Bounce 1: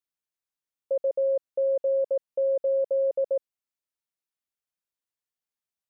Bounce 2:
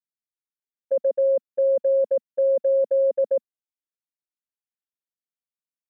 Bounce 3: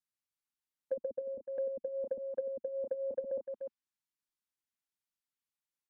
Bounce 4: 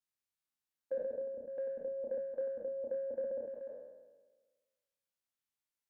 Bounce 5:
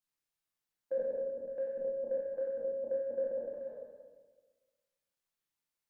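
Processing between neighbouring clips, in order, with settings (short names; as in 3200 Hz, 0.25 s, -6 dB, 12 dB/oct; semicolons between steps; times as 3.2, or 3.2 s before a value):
gate -28 dBFS, range -17 dB; bell 230 Hz +10 dB 0.94 oct; gain +3.5 dB
band shelf 530 Hz -10 dB 1 oct; echo 0.298 s -10 dB; treble ducked by the level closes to 320 Hz, closed at -28.5 dBFS
spectral trails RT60 1.36 s; gain -4 dB
reverb RT60 0.80 s, pre-delay 6 ms, DRR 1.5 dB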